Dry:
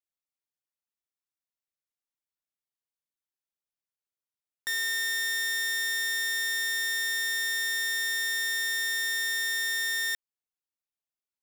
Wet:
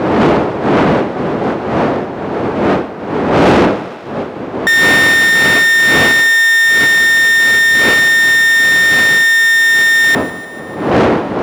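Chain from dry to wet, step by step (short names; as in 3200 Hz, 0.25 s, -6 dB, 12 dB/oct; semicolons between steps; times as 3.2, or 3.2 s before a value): wind noise 340 Hz -32 dBFS; overdrive pedal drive 31 dB, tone 3500 Hz, clips at -10 dBFS; HPF 75 Hz; thinning echo 0.149 s, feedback 73%, high-pass 310 Hz, level -17 dB; gain +8.5 dB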